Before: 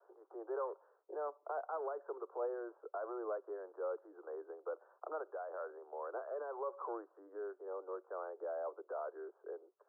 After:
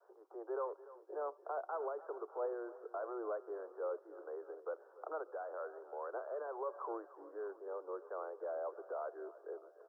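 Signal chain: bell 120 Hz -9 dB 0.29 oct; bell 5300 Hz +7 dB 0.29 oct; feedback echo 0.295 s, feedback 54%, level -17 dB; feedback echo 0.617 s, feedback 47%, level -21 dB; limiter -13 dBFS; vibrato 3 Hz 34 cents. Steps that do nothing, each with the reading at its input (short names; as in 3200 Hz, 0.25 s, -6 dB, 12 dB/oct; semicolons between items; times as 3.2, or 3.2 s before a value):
bell 120 Hz: input band starts at 290 Hz; bell 5300 Hz: input band ends at 1600 Hz; limiter -13 dBFS: input peak -28.5 dBFS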